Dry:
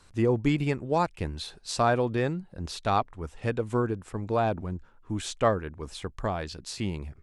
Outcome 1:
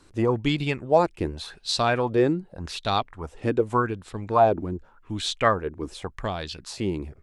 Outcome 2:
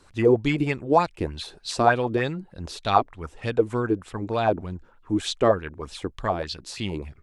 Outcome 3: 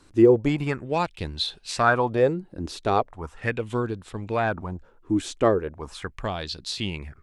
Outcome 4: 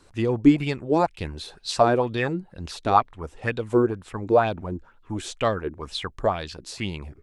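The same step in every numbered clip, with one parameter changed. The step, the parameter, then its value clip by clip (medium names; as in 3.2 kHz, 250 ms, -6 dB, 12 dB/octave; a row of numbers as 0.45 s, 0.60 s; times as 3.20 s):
sweeping bell, rate: 0.86 Hz, 3.3 Hz, 0.38 Hz, 2.1 Hz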